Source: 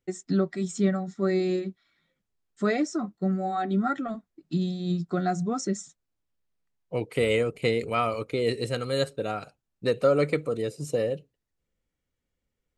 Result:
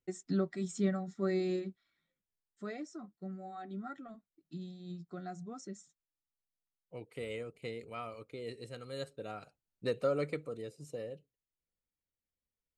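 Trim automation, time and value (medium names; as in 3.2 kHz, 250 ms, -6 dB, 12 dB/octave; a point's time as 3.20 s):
1.62 s -7.5 dB
2.63 s -17 dB
8.71 s -17 dB
9.86 s -8.5 dB
10.89 s -15.5 dB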